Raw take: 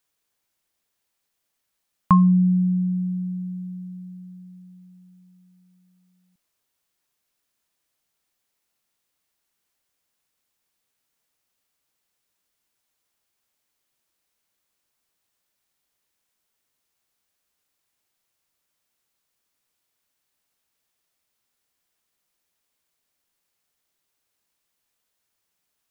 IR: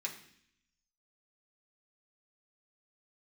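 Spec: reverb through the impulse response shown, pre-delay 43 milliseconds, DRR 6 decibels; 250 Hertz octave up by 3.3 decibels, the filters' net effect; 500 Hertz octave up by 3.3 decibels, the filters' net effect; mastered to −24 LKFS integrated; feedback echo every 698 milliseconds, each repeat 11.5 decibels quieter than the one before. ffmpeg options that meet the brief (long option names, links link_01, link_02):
-filter_complex "[0:a]equalizer=frequency=250:width_type=o:gain=5.5,equalizer=frequency=500:width_type=o:gain=3.5,aecho=1:1:698|1396|2094:0.266|0.0718|0.0194,asplit=2[link_01][link_02];[1:a]atrim=start_sample=2205,adelay=43[link_03];[link_02][link_03]afir=irnorm=-1:irlink=0,volume=-7dB[link_04];[link_01][link_04]amix=inputs=2:normalize=0,volume=-6dB"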